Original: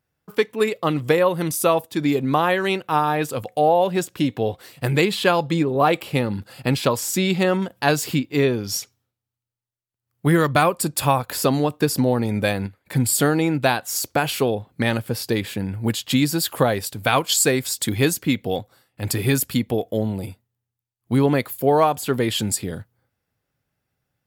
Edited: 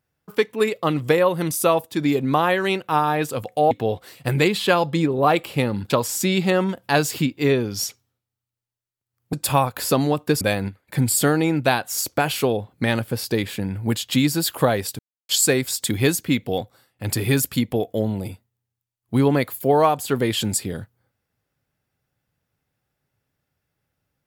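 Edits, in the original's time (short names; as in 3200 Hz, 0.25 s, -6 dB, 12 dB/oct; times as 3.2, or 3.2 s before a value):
3.71–4.28 cut
6.47–6.83 cut
10.26–10.86 cut
11.94–12.39 cut
16.97–17.27 mute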